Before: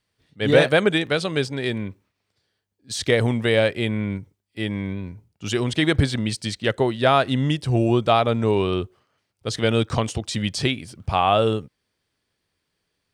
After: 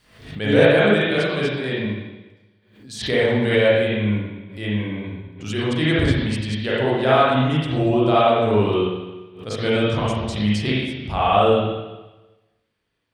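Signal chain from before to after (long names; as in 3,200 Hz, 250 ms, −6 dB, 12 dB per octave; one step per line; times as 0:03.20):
convolution reverb RT60 1.1 s, pre-delay 38 ms, DRR −8.5 dB
background raised ahead of every attack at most 90 dB per second
level −7 dB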